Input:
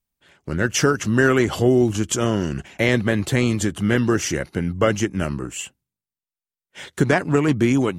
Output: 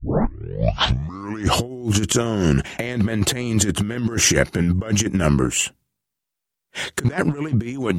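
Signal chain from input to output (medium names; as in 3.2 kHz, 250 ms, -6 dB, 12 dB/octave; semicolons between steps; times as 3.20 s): tape start-up on the opening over 1.62 s; compressor with a negative ratio -24 dBFS, ratio -0.5; trim +4.5 dB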